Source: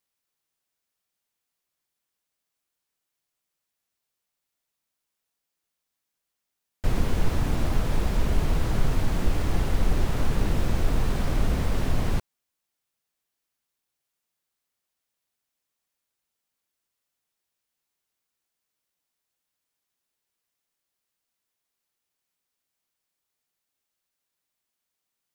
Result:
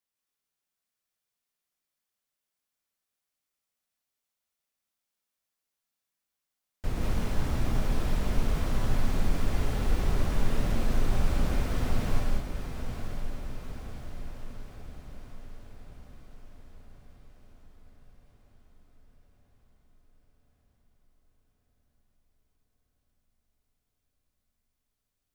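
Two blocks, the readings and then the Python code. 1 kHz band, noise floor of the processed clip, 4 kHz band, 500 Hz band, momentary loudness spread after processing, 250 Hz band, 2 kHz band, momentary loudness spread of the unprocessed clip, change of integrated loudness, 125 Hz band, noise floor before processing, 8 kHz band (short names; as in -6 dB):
-3.0 dB, under -85 dBFS, -3.0 dB, -3.5 dB, 18 LU, -3.0 dB, -3.0 dB, 1 LU, -4.5 dB, -4.0 dB, -84 dBFS, -3.0 dB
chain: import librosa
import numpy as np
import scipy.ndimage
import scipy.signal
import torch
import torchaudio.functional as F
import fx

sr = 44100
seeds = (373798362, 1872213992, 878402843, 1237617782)

y = fx.echo_diffused(x, sr, ms=915, feedback_pct=60, wet_db=-8.5)
y = fx.rev_gated(y, sr, seeds[0], gate_ms=230, shape='rising', drr_db=-1.0)
y = F.gain(torch.from_numpy(y), -7.5).numpy()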